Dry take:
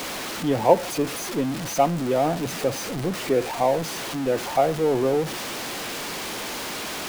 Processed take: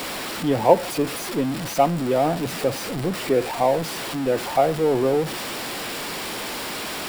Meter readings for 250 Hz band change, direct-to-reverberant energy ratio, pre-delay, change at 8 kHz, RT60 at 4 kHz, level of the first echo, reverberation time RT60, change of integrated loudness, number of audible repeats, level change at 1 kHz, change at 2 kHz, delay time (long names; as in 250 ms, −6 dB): +1.5 dB, no reverb audible, no reverb audible, −0.5 dB, no reverb audible, no echo audible, no reverb audible, +1.5 dB, no echo audible, +1.5 dB, +1.5 dB, no echo audible